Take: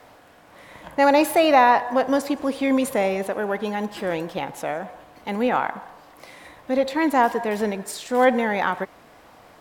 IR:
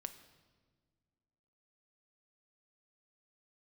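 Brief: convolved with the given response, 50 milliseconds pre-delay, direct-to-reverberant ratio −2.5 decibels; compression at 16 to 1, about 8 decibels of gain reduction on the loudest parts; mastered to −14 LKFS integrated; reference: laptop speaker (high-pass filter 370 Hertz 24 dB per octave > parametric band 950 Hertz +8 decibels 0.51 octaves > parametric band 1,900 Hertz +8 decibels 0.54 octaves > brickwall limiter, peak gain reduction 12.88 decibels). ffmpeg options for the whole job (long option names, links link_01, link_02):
-filter_complex "[0:a]acompressor=threshold=-19dB:ratio=16,asplit=2[link_01][link_02];[1:a]atrim=start_sample=2205,adelay=50[link_03];[link_02][link_03]afir=irnorm=-1:irlink=0,volume=6dB[link_04];[link_01][link_04]amix=inputs=2:normalize=0,highpass=frequency=370:width=0.5412,highpass=frequency=370:width=1.3066,equalizer=frequency=950:width_type=o:width=0.51:gain=8,equalizer=frequency=1900:width_type=o:width=0.54:gain=8,volume=9.5dB,alimiter=limit=-4dB:level=0:latency=1"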